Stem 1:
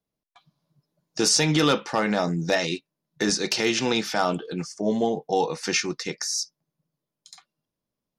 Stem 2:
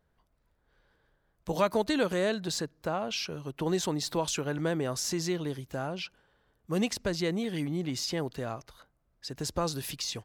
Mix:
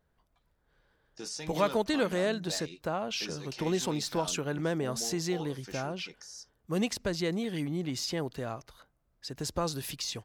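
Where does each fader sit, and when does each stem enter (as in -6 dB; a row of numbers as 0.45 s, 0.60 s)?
-19.5 dB, -1.0 dB; 0.00 s, 0.00 s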